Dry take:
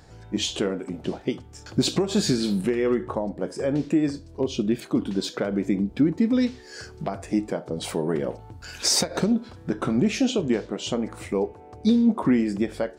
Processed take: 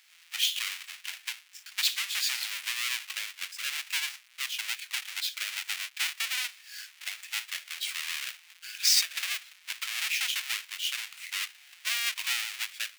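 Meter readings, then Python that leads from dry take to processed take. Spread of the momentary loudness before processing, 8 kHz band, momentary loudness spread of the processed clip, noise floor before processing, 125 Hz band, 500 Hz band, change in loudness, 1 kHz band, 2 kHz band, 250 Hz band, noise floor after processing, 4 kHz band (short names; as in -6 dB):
10 LU, 0.0 dB, 11 LU, -46 dBFS, under -40 dB, under -40 dB, -5.5 dB, -10.5 dB, +6.0 dB, under -40 dB, -59 dBFS, +2.5 dB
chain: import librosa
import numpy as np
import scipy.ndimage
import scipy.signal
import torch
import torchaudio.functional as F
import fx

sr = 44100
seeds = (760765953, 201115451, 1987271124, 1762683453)

y = fx.halfwave_hold(x, sr)
y = fx.ladder_highpass(y, sr, hz=1900.0, resonance_pct=35)
y = y * 10.0 ** (3.0 / 20.0)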